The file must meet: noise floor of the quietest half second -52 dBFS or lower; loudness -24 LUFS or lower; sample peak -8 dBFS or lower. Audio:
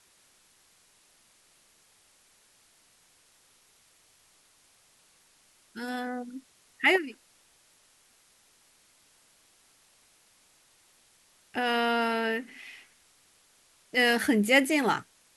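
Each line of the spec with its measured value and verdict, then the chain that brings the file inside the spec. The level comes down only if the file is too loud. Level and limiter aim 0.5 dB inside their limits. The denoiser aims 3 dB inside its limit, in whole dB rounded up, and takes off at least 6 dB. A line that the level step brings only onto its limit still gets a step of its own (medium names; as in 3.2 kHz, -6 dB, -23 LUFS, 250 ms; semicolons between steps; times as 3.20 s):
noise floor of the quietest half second -63 dBFS: pass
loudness -26.5 LUFS: pass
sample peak -10.5 dBFS: pass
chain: none needed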